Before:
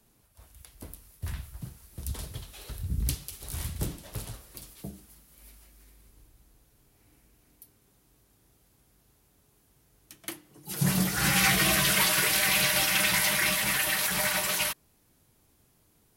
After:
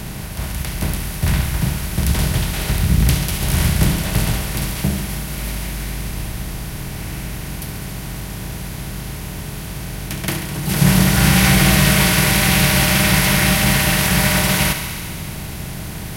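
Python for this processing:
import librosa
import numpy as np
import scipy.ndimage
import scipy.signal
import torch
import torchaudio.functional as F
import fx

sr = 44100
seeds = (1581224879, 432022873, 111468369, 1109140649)

y = fx.bin_compress(x, sr, power=0.4)
y = fx.low_shelf(y, sr, hz=380.0, db=11.0)
y = fx.echo_thinned(y, sr, ms=69, feedback_pct=82, hz=420.0, wet_db=-10)
y = y * 10.0 ** (1.5 / 20.0)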